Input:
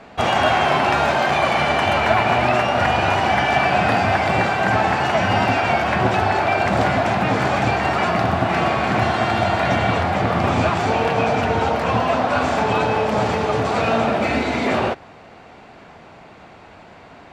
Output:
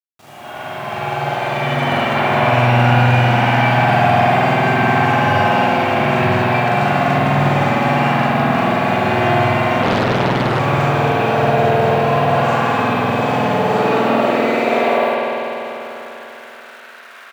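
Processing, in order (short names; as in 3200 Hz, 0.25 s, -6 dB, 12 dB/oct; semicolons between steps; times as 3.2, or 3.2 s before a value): opening faded in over 2.27 s; high shelf 7200 Hz +6.5 dB; notches 60/120 Hz; loudspeakers at several distances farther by 14 m 0 dB, 70 m -1 dB; requantised 6-bit, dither none; high-pass sweep 130 Hz -> 1400 Hz, 13.28–15.87; spring tank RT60 3.7 s, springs 49 ms, chirp 45 ms, DRR -7.5 dB; 9.82–10.6 Doppler distortion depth 0.98 ms; gain -10 dB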